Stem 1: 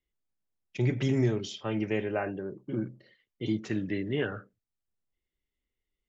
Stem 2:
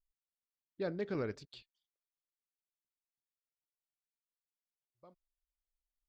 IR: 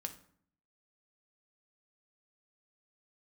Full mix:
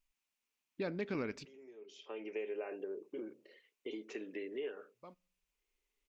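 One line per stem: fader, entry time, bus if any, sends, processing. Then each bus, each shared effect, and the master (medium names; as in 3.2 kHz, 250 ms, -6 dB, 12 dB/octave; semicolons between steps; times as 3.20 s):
1.81 s -19.5 dB -> 2.39 s -8.5 dB, 0.45 s, no send, compression 2.5:1, threshold -39 dBFS, peak gain reduction 12 dB; resonant high-pass 430 Hz, resonance Q 4.9; auto duck -9 dB, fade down 0.40 s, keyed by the second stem
+2.5 dB, 0.00 s, muted 1.47–2.47 s, send -19.5 dB, none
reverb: on, RT60 0.60 s, pre-delay 3 ms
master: fifteen-band graphic EQ 100 Hz -6 dB, 250 Hz +7 dB, 1 kHz +5 dB, 2.5 kHz +12 dB, 6.3 kHz +5 dB; compression 2:1, threshold -40 dBFS, peak gain reduction 7.5 dB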